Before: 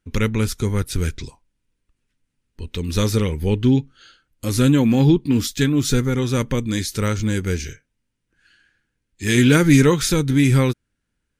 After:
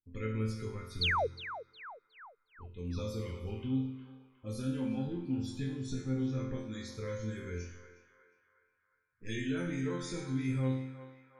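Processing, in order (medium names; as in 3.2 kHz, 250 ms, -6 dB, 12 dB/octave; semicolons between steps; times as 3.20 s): loudest bins only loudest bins 64; 5.07–6.60 s: bass shelf 370 Hz +9 dB; compression, threshold -15 dBFS, peak gain reduction 11.5 dB; level-controlled noise filter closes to 450 Hz, open at -19.5 dBFS; 7.62–9.29 s: ring modulator 95 Hz; chord resonator F2 major, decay 0.74 s; 1.01–1.27 s: painted sound fall 400–4800 Hz -30 dBFS; band-passed feedback delay 361 ms, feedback 58%, band-pass 1.2 kHz, level -10 dB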